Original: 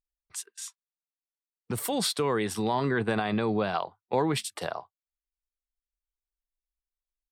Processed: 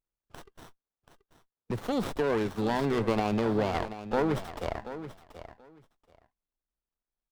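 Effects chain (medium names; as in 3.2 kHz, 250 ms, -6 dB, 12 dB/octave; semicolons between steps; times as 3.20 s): median filter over 5 samples; feedback delay 732 ms, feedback 16%, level -12.5 dB; sliding maximum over 17 samples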